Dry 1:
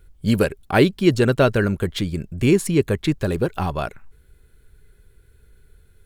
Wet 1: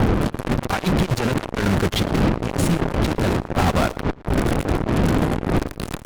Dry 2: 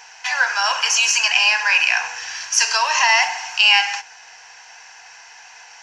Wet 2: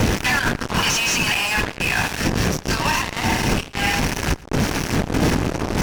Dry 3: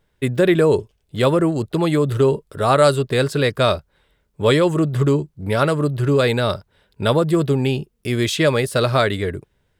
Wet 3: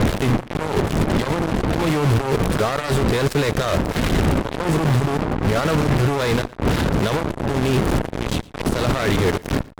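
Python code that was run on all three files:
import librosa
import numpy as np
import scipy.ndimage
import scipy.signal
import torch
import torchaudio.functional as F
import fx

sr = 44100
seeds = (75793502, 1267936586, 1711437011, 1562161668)

p1 = fx.delta_mod(x, sr, bps=64000, step_db=-25.0)
p2 = fx.dmg_wind(p1, sr, seeds[0], corner_hz=260.0, level_db=-16.0)
p3 = fx.over_compress(p2, sr, threshold_db=-21.0, ratio=-1.0)
p4 = fx.cheby_harmonics(p3, sr, harmonics=(3, 4, 6), levels_db=(-12, -19, -20), full_scale_db=-4.0)
p5 = fx.fuzz(p4, sr, gain_db=33.0, gate_db=-34.0)
p6 = fx.high_shelf(p5, sr, hz=5200.0, db=-8.0)
y = p6 + fx.echo_single(p6, sr, ms=114, db=-22.0, dry=0)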